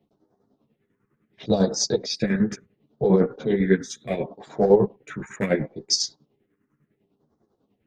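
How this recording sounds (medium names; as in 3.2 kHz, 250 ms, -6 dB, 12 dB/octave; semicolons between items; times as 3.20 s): phasing stages 4, 0.71 Hz, lowest notch 670–2600 Hz; chopped level 10 Hz, depth 60%, duty 45%; a shimmering, thickened sound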